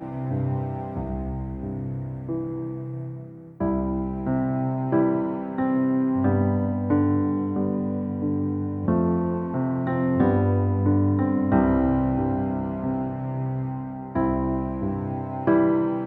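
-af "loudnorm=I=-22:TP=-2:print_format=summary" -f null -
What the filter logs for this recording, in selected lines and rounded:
Input Integrated:    -24.9 LUFS
Input True Peak:      -6.9 dBTP
Input LRA:             5.1 LU
Input Threshold:     -34.9 LUFS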